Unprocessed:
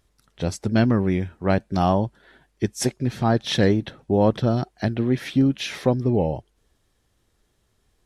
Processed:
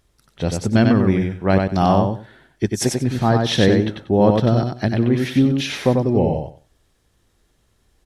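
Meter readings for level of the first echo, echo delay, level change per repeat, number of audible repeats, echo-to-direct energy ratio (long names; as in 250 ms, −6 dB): −4.0 dB, 94 ms, −14.5 dB, 3, −4.0 dB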